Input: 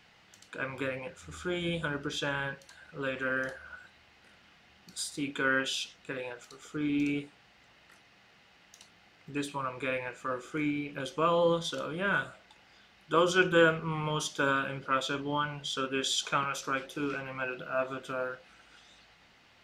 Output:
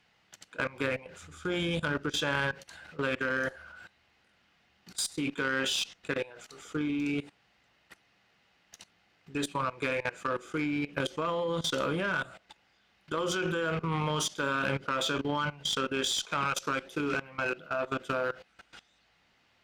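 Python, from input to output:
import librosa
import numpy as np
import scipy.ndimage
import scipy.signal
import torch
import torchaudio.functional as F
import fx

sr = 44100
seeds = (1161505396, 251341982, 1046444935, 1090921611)

y = fx.level_steps(x, sr, step_db=19)
y = fx.cheby_harmonics(y, sr, harmonics=(2, 8), levels_db=(-9, -27), full_scale_db=-24.0)
y = y * 10.0 ** (7.5 / 20.0)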